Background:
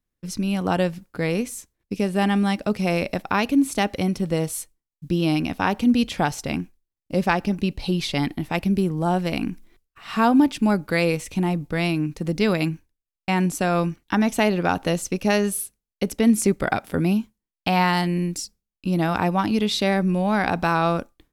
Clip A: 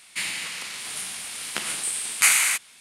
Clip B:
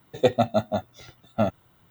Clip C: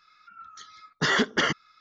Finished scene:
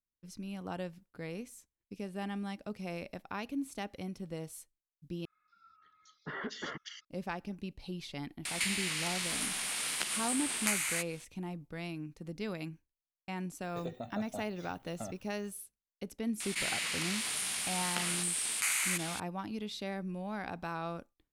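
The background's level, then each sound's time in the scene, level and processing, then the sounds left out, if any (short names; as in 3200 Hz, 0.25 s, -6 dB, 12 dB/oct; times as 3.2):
background -18 dB
5.25 replace with C -15.5 dB + bands offset in time lows, highs 0.23 s, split 2500 Hz
8.45 add A -7.5 dB + three-band squash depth 100%
13.62 add B -8.5 dB + compressor 12:1, threshold -28 dBFS
16.4 add A -15.5 dB + fast leveller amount 70%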